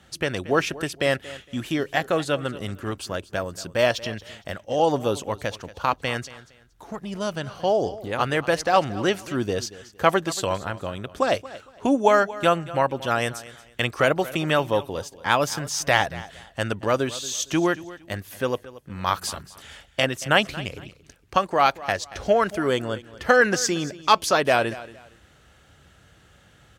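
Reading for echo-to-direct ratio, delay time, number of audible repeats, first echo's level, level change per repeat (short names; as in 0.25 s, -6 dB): -17.0 dB, 0.23 s, 2, -17.5 dB, -11.5 dB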